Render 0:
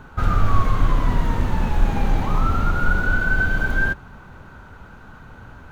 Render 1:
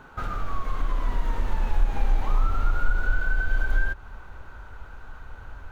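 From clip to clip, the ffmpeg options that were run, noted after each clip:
ffmpeg -i in.wav -af "bass=frequency=250:gain=-8,treble=frequency=4000:gain=-1,acompressor=threshold=-26dB:ratio=4,asubboost=boost=10.5:cutoff=57,volume=-2.5dB" out.wav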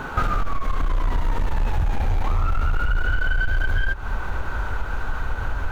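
ffmpeg -i in.wav -af "aeval=exprs='0.355*sin(PI/2*2.82*val(0)/0.355)':channel_layout=same,acompressor=threshold=-22dB:ratio=6,volume=4dB" out.wav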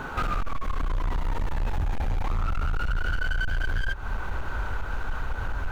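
ffmpeg -i in.wav -af "asoftclip=type=hard:threshold=-18.5dB,volume=-3.5dB" out.wav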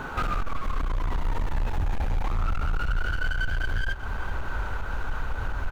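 ffmpeg -i in.wav -af "aecho=1:1:390:0.237" out.wav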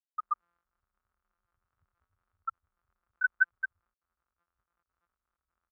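ffmpeg -i in.wav -af "acrusher=bits=2:mode=log:mix=0:aa=0.000001,afftfilt=real='re*gte(hypot(re,im),0.447)':imag='im*gte(hypot(re,im),0.447)':win_size=1024:overlap=0.75,highpass=frequency=1300:width_type=q:width=4.4" out.wav

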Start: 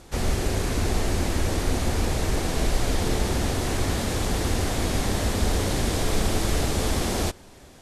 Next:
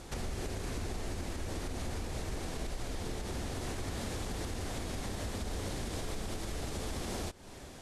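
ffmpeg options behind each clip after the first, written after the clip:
ffmpeg -i in.wav -af "equalizer=frequency=13000:width=4.1:gain=-5.5,alimiter=limit=-21dB:level=0:latency=1:release=209,acompressor=threshold=-40dB:ratio=2" out.wav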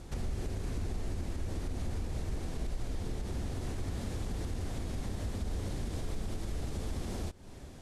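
ffmpeg -i in.wav -af "lowshelf=frequency=310:gain=10,volume=-6dB" out.wav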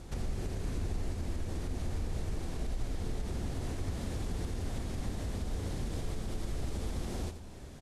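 ffmpeg -i in.wav -af "aecho=1:1:87|174|261|348|435:0.316|0.155|0.0759|0.0372|0.0182" out.wav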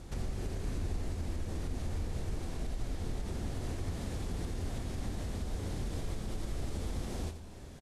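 ffmpeg -i in.wav -filter_complex "[0:a]asplit=2[link_01][link_02];[link_02]adelay=24,volume=-12dB[link_03];[link_01][link_03]amix=inputs=2:normalize=0,volume=-1dB" out.wav

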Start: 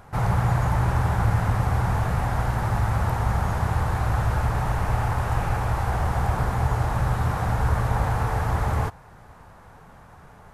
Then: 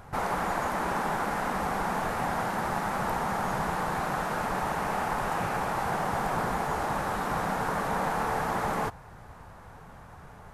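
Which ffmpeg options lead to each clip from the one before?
ffmpeg -i in.wav -af "afftfilt=real='re*lt(hypot(re,im),0.316)':imag='im*lt(hypot(re,im),0.316)':win_size=1024:overlap=0.75" out.wav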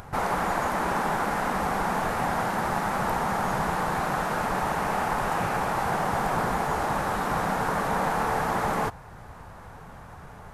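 ffmpeg -i in.wav -af "acompressor=mode=upward:threshold=-43dB:ratio=2.5,volume=3dB" out.wav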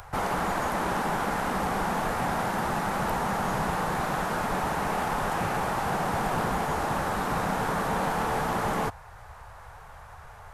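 ffmpeg -i in.wav -filter_complex "[0:a]acrossover=split=120|470|4000[link_01][link_02][link_03][link_04];[link_02]acrusher=bits=5:mix=0:aa=0.5[link_05];[link_03]asoftclip=type=tanh:threshold=-24dB[link_06];[link_01][link_05][link_06][link_04]amix=inputs=4:normalize=0" out.wav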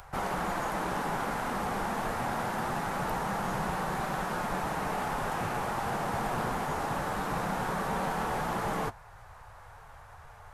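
ffmpeg -i in.wav -af "flanger=delay=5.2:depth=3.5:regen=-60:speed=0.25:shape=sinusoidal" out.wav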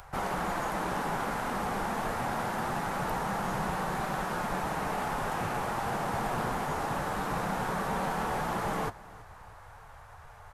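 ffmpeg -i in.wav -af "aecho=1:1:323|646|969:0.0891|0.0357|0.0143" out.wav

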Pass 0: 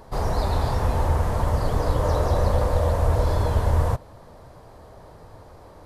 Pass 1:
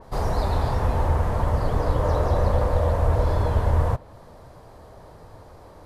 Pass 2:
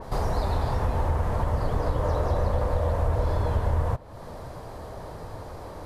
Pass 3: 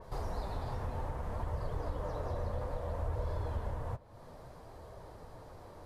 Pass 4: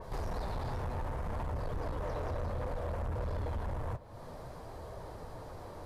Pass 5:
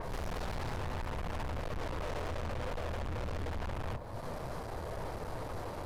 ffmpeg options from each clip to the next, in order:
ffmpeg -i in.wav -af "adynamicequalizer=threshold=0.00355:dfrequency=3600:dqfactor=0.7:tfrequency=3600:tqfactor=0.7:attack=5:release=100:ratio=0.375:range=3.5:mode=cutabove:tftype=highshelf" out.wav
ffmpeg -i in.wav -af "acompressor=threshold=-37dB:ratio=2,volume=7dB" out.wav
ffmpeg -i in.wav -af "flanger=delay=1.8:depth=6.8:regen=-52:speed=0.61:shape=sinusoidal,volume=-8dB" out.wav
ffmpeg -i in.wav -af "asoftclip=type=tanh:threshold=-37.5dB,volume=5.5dB" out.wav
ffmpeg -i in.wav -af "aeval=exprs='(tanh(224*val(0)+0.55)-tanh(0.55))/224':channel_layout=same,volume=10.5dB" out.wav

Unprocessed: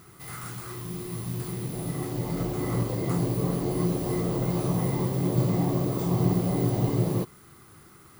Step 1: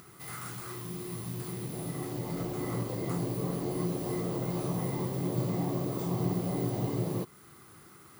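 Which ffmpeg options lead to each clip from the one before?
ffmpeg -i in.wav -filter_complex "[0:a]asplit=2[link_01][link_02];[link_02]acompressor=threshold=-34dB:ratio=6,volume=-2dB[link_03];[link_01][link_03]amix=inputs=2:normalize=0,highpass=frequency=120:poles=1,acompressor=mode=upward:threshold=-45dB:ratio=2.5,volume=-6.5dB" out.wav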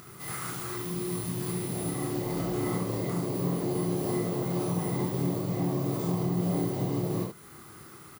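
ffmpeg -i in.wav -filter_complex "[0:a]alimiter=level_in=1.5dB:limit=-24dB:level=0:latency=1:release=288,volume=-1.5dB,asplit=2[link_01][link_02];[link_02]aecho=0:1:28|73:0.668|0.596[link_03];[link_01][link_03]amix=inputs=2:normalize=0,volume=3dB" out.wav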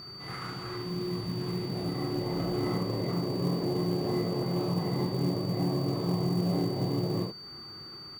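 ffmpeg -i in.wav -af "adynamicsmooth=sensitivity=4:basefreq=2500,aeval=exprs='val(0)+0.00708*sin(2*PI*4600*n/s)':channel_layout=same,acrusher=bits=6:mode=log:mix=0:aa=0.000001" out.wav

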